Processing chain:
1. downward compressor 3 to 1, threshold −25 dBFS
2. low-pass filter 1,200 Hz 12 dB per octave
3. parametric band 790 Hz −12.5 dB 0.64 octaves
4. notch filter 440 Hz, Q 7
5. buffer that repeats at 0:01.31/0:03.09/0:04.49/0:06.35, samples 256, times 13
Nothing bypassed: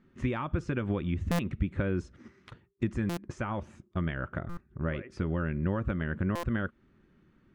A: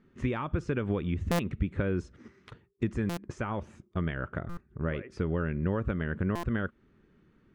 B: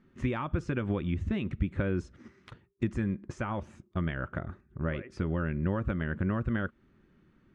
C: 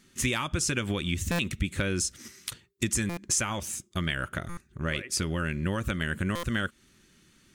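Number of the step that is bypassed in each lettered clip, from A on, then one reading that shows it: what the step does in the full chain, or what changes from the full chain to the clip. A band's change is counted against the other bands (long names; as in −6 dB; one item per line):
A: 4, 500 Hz band +2.0 dB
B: 5, 4 kHz band −2.0 dB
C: 2, 8 kHz band +24.0 dB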